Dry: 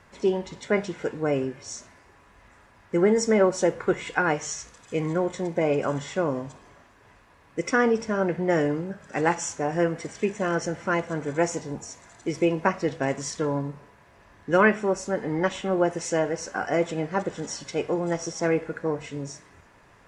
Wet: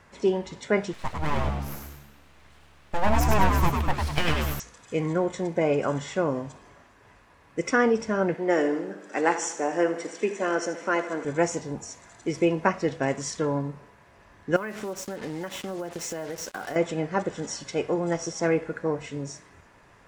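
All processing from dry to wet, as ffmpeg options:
ffmpeg -i in.wav -filter_complex "[0:a]asettb=1/sr,asplit=3[link_01][link_02][link_03];[link_01]atrim=end=0.934[link_04];[link_02]atrim=start=0.93:end=4.6,asetpts=PTS-STARTPTS,afade=type=in:duration=0.004:curve=qsin,afade=type=out:start_time=3.666:duration=0.004:curve=qsin,aeval=exprs='abs(val(0))':channel_layout=same,asplit=6[link_05][link_06][link_07][link_08][link_09][link_10];[link_06]adelay=100,afreqshift=71,volume=-4dB[link_11];[link_07]adelay=200,afreqshift=142,volume=-11.7dB[link_12];[link_08]adelay=300,afreqshift=213,volume=-19.5dB[link_13];[link_09]adelay=400,afreqshift=284,volume=-27.2dB[link_14];[link_10]adelay=500,afreqshift=355,volume=-35dB[link_15];[link_05][link_11][link_12][link_13][link_14][link_15]amix=inputs=6:normalize=0,atrim=end_sample=161847[link_16];[link_03]atrim=start=4.596[link_17];[link_04][link_16]acrossfade=duration=0.004:curve1=hsin:curve2=qsin[link_18];[link_18][link_17]acrossfade=duration=0.004:curve1=qsin:curve2=hsin,asettb=1/sr,asplit=3[link_19][link_20][link_21];[link_19]atrim=end=8.344[link_22];[link_20]atrim=start=8.34:end=11.25,asetpts=PTS-STARTPTS,afade=type=in:duration=0.004:curve=qsin,afade=type=out:start_time=2.906:duration=0.004:curve=qsin,highpass=frequency=240:width=0.5412,highpass=frequency=240:width=1.3066,aecho=1:1:78|156|234|312|390|468:0.237|0.13|0.0717|0.0395|0.0217|0.0119,atrim=end_sample=128331[link_23];[link_21]atrim=start=11.246[link_24];[link_22][link_23]acrossfade=duration=0.004:curve1=hsin:curve2=qsin[link_25];[link_25][link_24]acrossfade=duration=0.004:curve1=qsin:curve2=hsin,asettb=1/sr,asplit=3[link_26][link_27][link_28];[link_26]atrim=end=14.564[link_29];[link_27]atrim=start=14.56:end=16.76,asetpts=PTS-STARTPTS,afade=type=in:duration=0.004:curve=qsin,afade=type=out:start_time=2.196:duration=0.004:curve=qsin,highpass=83,acrusher=bits=5:mix=0:aa=0.5,acompressor=threshold=-29dB:ratio=12:attack=3.2:release=140:knee=1:detection=peak[link_30];[link_28]atrim=start=16.756[link_31];[link_29][link_30]acrossfade=duration=0.004:curve1=hsin:curve2=qsin[link_32];[link_32][link_31]acrossfade=duration=0.004:curve1=qsin:curve2=hsin" out.wav

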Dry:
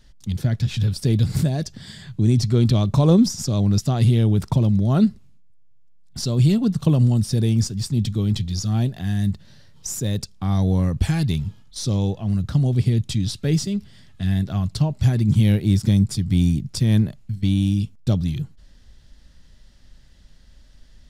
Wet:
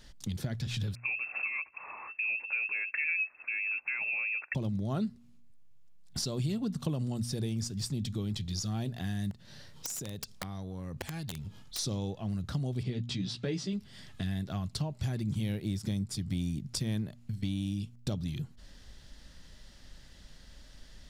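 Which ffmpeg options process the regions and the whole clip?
ffmpeg -i in.wav -filter_complex "[0:a]asettb=1/sr,asplit=3[link_01][link_02][link_03];[link_01]atrim=end=0.954[link_04];[link_02]atrim=start=0.95:end=4.55,asetpts=PTS-STARTPTS,afade=type=in:duration=0.004:curve=qsin,afade=type=out:start_time=3.596:duration=0.004:curve=qsin,highpass=280,lowpass=frequency=2400:width_type=q:width=0.5098,lowpass=frequency=2400:width_type=q:width=0.6013,lowpass=frequency=2400:width_type=q:width=0.9,lowpass=frequency=2400:width_type=q:width=2.563,afreqshift=-2800[link_05];[link_03]atrim=start=4.546[link_06];[link_04][link_05]acrossfade=duration=0.004:curve1=hsin:curve2=qsin[link_07];[link_07][link_06]acrossfade=duration=0.004:curve1=qsin:curve2=hsin,asettb=1/sr,asplit=3[link_08][link_09][link_10];[link_08]atrim=end=9.314[link_11];[link_09]atrim=start=9.31:end=11.79,asetpts=PTS-STARTPTS,afade=type=in:duration=0.004:curve=qsin,afade=type=out:start_time=2.476:duration=0.004:curve=qsin,acompressor=threshold=-34dB:ratio=10:attack=3.2:release=140:knee=1:detection=peak,aeval=exprs='(mod(28.2*val(0)+1,2)-1)/28.2':channel_layout=same[link_12];[link_10]atrim=start=11.786[link_13];[link_11][link_12]acrossfade=duration=0.004:curve1=hsin:curve2=qsin[link_14];[link_14][link_13]acrossfade=duration=0.004:curve1=qsin:curve2=hsin,asettb=1/sr,asplit=3[link_15][link_16][link_17];[link_15]atrim=end=12.834[link_18];[link_16]atrim=start=12.83:end=13.73,asetpts=PTS-STARTPTS,afade=type=in:duration=0.004:curve=qsin,afade=type=out:start_time=0.896:duration=0.004:curve=qsin,highpass=120,lowpass=4500,asplit=2[link_19][link_20];[link_20]adelay=16,volume=-4.5dB[link_21];[link_19][link_21]amix=inputs=2:normalize=0,atrim=end_sample=39690[link_22];[link_17]atrim=start=13.726[link_23];[link_18][link_22]acrossfade=duration=0.004:curve1=hsin:curve2=qsin[link_24];[link_24][link_23]acrossfade=duration=0.004:curve1=qsin:curve2=hsin,lowshelf=frequency=190:gain=-7,bandreject=frequency=119.3:width_type=h:width=4,bandreject=frequency=238.6:width_type=h:width=4,acompressor=threshold=-38dB:ratio=3,volume=3dB" out.wav

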